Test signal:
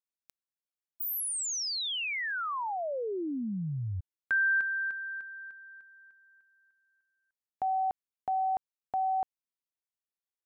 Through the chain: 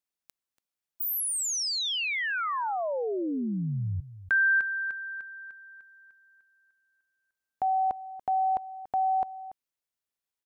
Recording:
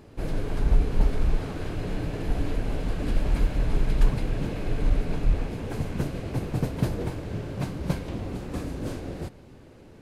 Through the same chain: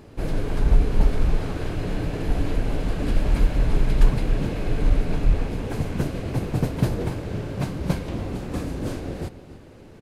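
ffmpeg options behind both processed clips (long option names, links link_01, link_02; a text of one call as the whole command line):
ffmpeg -i in.wav -filter_complex "[0:a]asplit=2[link_01][link_02];[link_02]adelay=285.7,volume=-15dB,highshelf=frequency=4000:gain=-6.43[link_03];[link_01][link_03]amix=inputs=2:normalize=0,volume=3.5dB" out.wav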